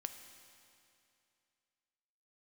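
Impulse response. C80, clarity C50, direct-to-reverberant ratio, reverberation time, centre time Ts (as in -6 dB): 9.5 dB, 8.5 dB, 7.0 dB, 2.6 s, 31 ms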